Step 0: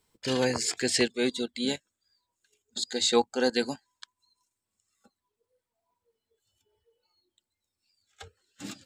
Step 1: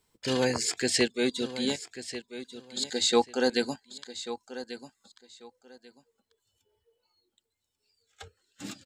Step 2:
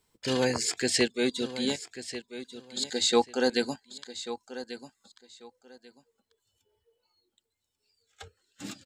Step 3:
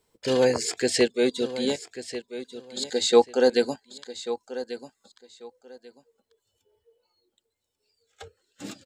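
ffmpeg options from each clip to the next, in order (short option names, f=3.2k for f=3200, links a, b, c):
-af "aecho=1:1:1140|2280:0.224|0.047"
-af anull
-af "equalizer=f=500:t=o:w=1.1:g=8"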